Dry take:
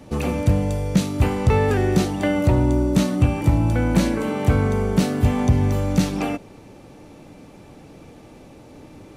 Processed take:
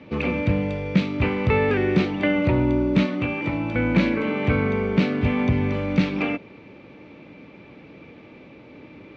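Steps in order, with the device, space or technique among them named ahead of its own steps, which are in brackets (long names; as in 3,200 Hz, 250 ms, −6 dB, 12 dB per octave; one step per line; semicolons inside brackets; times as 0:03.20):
0:03.06–0:03.75: parametric band 62 Hz −12 dB 2.7 octaves
guitar cabinet (loudspeaker in its box 91–3,800 Hz, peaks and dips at 94 Hz −5 dB, 140 Hz −3 dB, 760 Hz −7 dB, 2,300 Hz +9 dB)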